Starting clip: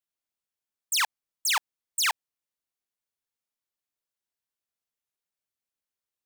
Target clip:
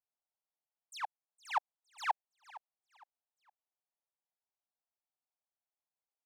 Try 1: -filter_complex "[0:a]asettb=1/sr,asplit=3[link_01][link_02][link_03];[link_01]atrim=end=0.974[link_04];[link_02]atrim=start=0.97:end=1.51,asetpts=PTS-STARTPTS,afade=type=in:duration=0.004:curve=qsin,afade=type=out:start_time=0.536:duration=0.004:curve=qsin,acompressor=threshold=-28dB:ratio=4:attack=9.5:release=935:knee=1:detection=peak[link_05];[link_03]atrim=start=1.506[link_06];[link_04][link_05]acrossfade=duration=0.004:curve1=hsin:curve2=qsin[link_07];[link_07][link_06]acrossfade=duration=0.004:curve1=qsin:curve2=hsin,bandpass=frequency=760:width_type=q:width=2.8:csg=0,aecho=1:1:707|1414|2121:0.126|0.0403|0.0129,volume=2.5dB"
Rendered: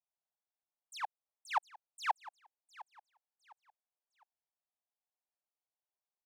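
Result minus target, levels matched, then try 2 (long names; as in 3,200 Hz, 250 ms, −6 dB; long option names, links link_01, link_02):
echo 245 ms late
-filter_complex "[0:a]asettb=1/sr,asplit=3[link_01][link_02][link_03];[link_01]atrim=end=0.974[link_04];[link_02]atrim=start=0.97:end=1.51,asetpts=PTS-STARTPTS,afade=type=in:duration=0.004:curve=qsin,afade=type=out:start_time=0.536:duration=0.004:curve=qsin,acompressor=threshold=-28dB:ratio=4:attack=9.5:release=935:knee=1:detection=peak[link_05];[link_03]atrim=start=1.506[link_06];[link_04][link_05]acrossfade=duration=0.004:curve1=hsin:curve2=qsin[link_07];[link_07][link_06]acrossfade=duration=0.004:curve1=qsin:curve2=hsin,bandpass=frequency=760:width_type=q:width=2.8:csg=0,aecho=1:1:462|924|1386:0.126|0.0403|0.0129,volume=2.5dB"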